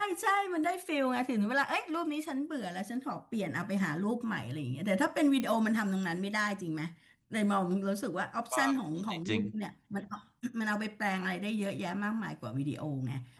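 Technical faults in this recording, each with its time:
5.40 s: pop -20 dBFS

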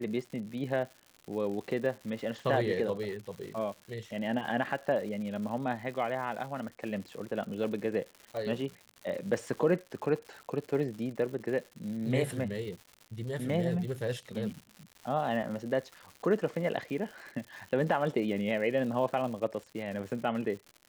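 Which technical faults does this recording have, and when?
crackle 200 per s -40 dBFS
8.37 s: pop

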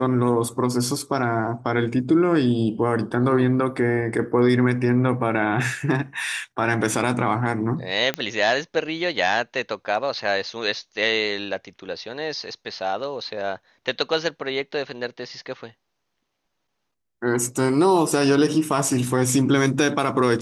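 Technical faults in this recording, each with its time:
8.14 s: pop -9 dBFS

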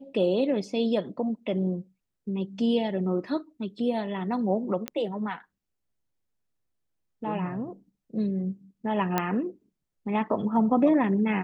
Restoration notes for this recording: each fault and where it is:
4.88 s: pop -15 dBFS
9.18 s: pop -10 dBFS

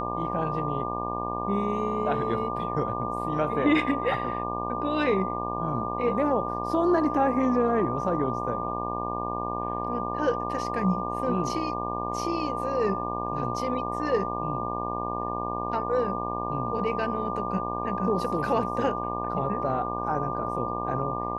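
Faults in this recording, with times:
buzz 60 Hz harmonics 20 -33 dBFS
whine 1.2 kHz -33 dBFS

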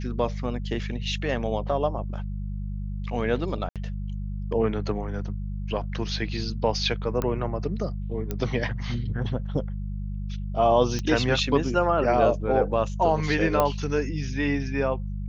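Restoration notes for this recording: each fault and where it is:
hum 50 Hz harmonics 4 -31 dBFS
3.69–3.76 s: dropout 67 ms
7.22 s: pop -14 dBFS
8.31 s: pop -15 dBFS
10.99 s: pop -17 dBFS
13.60 s: pop -9 dBFS

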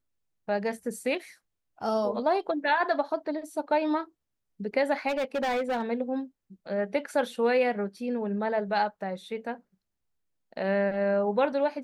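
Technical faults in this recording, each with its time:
5.08–5.82 s: clipped -25 dBFS

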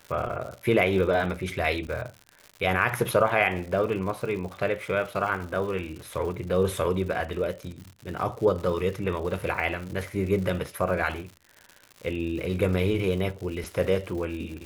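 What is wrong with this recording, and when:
crackle 150 per s -35 dBFS

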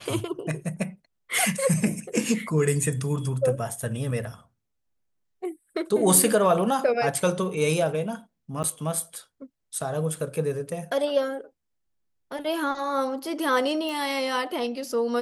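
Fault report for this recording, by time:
8.63–8.64 s: dropout 9.6 ms
13.89 s: pop

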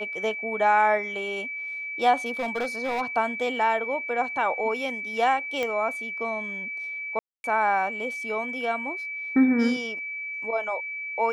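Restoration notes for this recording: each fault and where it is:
whine 2.3 kHz -31 dBFS
2.30–3.02 s: clipped -23.5 dBFS
5.63 s: pop -15 dBFS
7.19–7.44 s: dropout 251 ms

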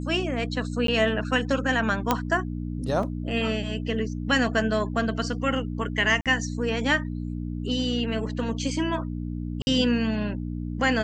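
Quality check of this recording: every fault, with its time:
hum 60 Hz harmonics 5 -31 dBFS
0.87–0.88 s: dropout 13 ms
2.11 s: pop -6 dBFS
3.03 s: dropout 3.2 ms
6.21–6.26 s: dropout 47 ms
9.62–9.67 s: dropout 50 ms

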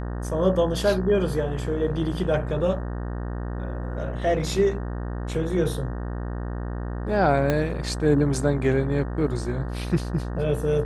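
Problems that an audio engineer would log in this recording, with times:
buzz 60 Hz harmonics 31 -30 dBFS
7.50 s: pop -10 dBFS

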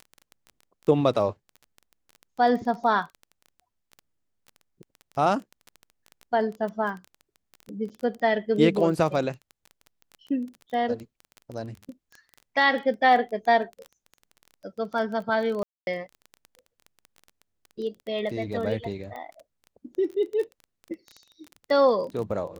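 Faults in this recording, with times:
crackle 16 per s -32 dBFS
7.89–7.90 s: dropout 6.9 ms
15.63–15.87 s: dropout 241 ms

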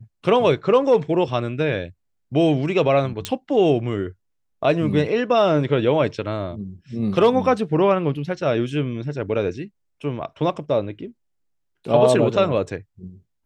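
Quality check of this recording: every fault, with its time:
3.25 s: pop -8 dBFS

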